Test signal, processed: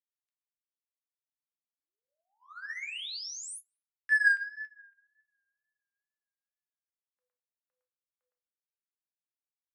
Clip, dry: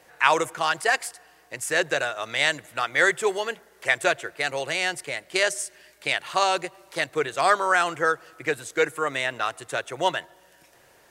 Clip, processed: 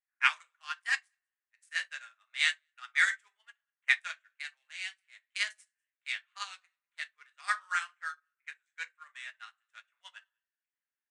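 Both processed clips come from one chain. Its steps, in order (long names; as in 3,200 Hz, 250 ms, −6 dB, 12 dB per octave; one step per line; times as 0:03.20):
adaptive Wiener filter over 9 samples
tape wow and flutter 65 cents
high-pass filter 1,400 Hz 24 dB per octave
rectangular room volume 250 cubic metres, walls furnished, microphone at 1.3 metres
downsampling to 22,050 Hz
on a send: single-tap delay 197 ms −23.5 dB
on the sum: expander for the loud parts 2.5 to 1, over −40 dBFS
level −2.5 dB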